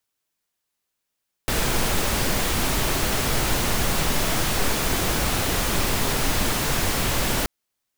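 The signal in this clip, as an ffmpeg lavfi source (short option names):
-f lavfi -i "anoisesrc=c=pink:a=0.407:d=5.98:r=44100:seed=1"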